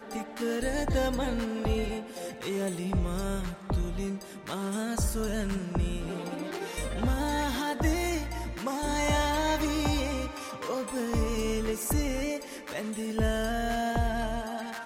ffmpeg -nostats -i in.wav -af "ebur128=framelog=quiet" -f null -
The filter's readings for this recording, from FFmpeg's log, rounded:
Integrated loudness:
  I:         -31.1 LUFS
  Threshold: -41.1 LUFS
Loudness range:
  LRA:         3.5 LU
  Threshold: -51.1 LUFS
  LRA low:   -32.9 LUFS
  LRA high:  -29.4 LUFS